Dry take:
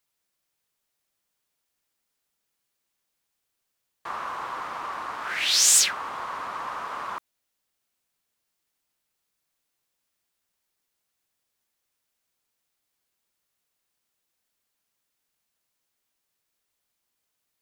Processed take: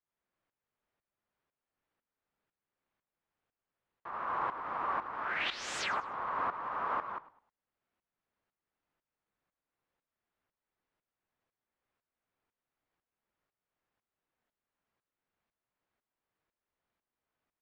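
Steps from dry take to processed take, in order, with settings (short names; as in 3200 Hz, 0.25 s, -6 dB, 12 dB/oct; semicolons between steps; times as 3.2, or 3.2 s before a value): LPF 1700 Hz 12 dB/oct; limiter -26 dBFS, peak gain reduction 5 dB; tremolo saw up 2 Hz, depth 80%; frequency-shifting echo 0.103 s, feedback 30%, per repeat -51 Hz, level -17 dB; gain +3 dB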